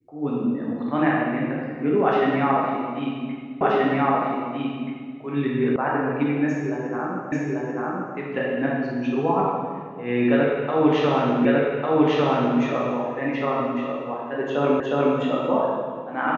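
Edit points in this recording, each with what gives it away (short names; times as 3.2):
3.61 repeat of the last 1.58 s
5.76 sound cut off
7.32 repeat of the last 0.84 s
11.45 repeat of the last 1.15 s
14.8 repeat of the last 0.36 s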